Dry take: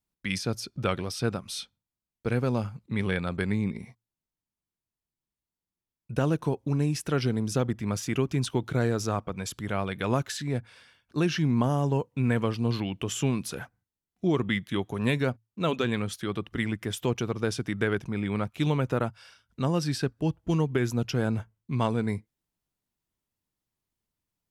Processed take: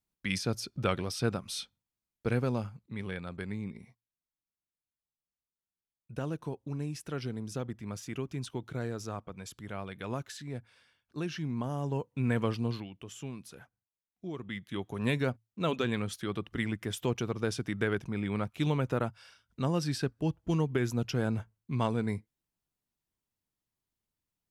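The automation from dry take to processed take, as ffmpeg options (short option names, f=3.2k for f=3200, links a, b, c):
-af "volume=16.5dB,afade=t=out:st=2.29:d=0.61:silence=0.398107,afade=t=in:st=11.65:d=0.88:silence=0.421697,afade=t=out:st=12.53:d=0.36:silence=0.251189,afade=t=in:st=14.42:d=0.71:silence=0.281838"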